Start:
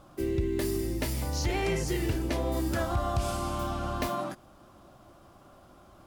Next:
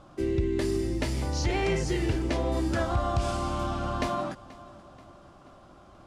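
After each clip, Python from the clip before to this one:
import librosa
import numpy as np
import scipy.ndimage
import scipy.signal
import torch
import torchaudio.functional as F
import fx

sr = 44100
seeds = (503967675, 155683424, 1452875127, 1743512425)

y = scipy.signal.sosfilt(scipy.signal.bessel(4, 6900.0, 'lowpass', norm='mag', fs=sr, output='sos'), x)
y = fx.echo_feedback(y, sr, ms=482, feedback_pct=49, wet_db=-20)
y = y * 10.0 ** (2.0 / 20.0)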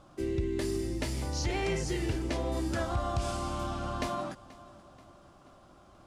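y = fx.high_shelf(x, sr, hz=5800.0, db=6.5)
y = y * 10.0 ** (-4.5 / 20.0)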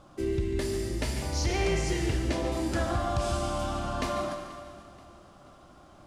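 y = x + 10.0 ** (-11.5 / 20.0) * np.pad(x, (int(144 * sr / 1000.0), 0))[:len(x)]
y = fx.rev_schroeder(y, sr, rt60_s=2.0, comb_ms=29, drr_db=4.5)
y = y * 10.0 ** (2.0 / 20.0)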